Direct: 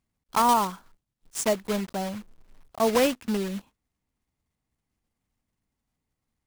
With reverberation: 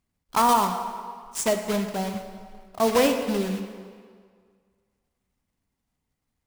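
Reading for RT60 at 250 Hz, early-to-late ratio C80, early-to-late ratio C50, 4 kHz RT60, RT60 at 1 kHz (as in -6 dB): 1.8 s, 8.5 dB, 7.5 dB, 1.5 s, 1.9 s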